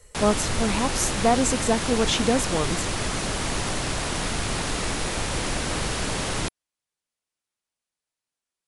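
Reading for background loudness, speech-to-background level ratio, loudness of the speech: -27.0 LUFS, 2.5 dB, -24.5 LUFS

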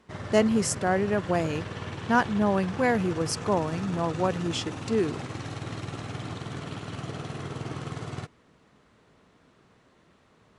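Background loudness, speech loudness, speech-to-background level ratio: -36.5 LUFS, -27.0 LUFS, 9.5 dB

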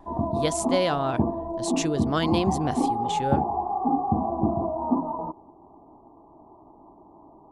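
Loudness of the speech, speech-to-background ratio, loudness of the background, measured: -28.0 LUFS, -1.0 dB, -27.0 LUFS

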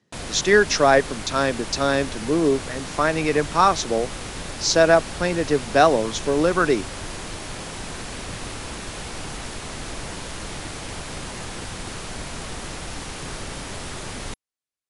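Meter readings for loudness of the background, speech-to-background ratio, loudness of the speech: -33.0 LUFS, 12.5 dB, -20.5 LUFS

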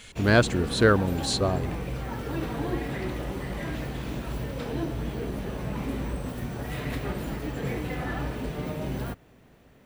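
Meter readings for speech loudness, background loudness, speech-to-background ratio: -24.0 LUFS, -33.0 LUFS, 9.0 dB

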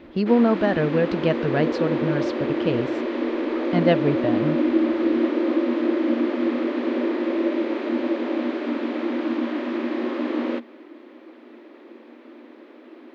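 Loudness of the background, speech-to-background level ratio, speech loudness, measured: -24.5 LUFS, 1.0 dB, -23.5 LUFS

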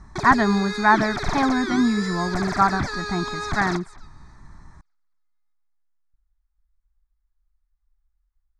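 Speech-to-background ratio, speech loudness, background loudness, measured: 7.0 dB, -22.0 LUFS, -29.0 LUFS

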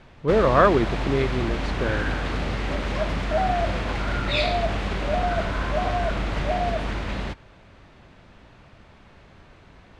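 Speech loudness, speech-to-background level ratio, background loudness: -22.5 LUFS, 4.0 dB, -26.5 LUFS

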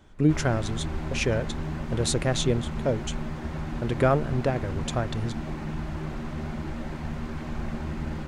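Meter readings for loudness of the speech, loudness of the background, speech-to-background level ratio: -28.0 LUFS, -34.0 LUFS, 6.0 dB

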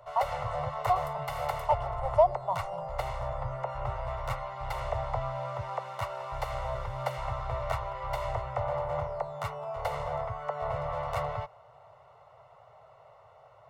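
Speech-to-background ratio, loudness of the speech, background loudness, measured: 4.0 dB, -30.5 LUFS, -34.5 LUFS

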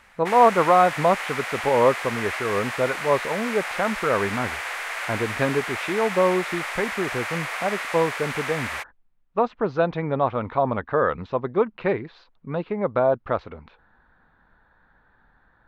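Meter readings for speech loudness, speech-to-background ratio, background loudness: -24.0 LUFS, 5.5 dB, -29.5 LUFS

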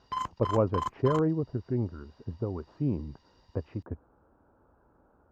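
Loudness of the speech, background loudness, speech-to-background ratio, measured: -31.5 LUFS, -36.0 LUFS, 4.5 dB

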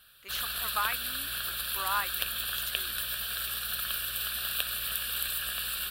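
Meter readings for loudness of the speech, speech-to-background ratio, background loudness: -36.0 LUFS, -5.0 dB, -31.0 LUFS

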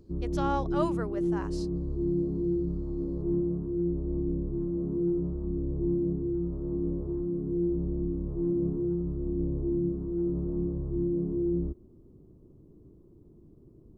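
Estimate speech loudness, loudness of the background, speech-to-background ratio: -35.0 LUFS, -31.0 LUFS, -4.0 dB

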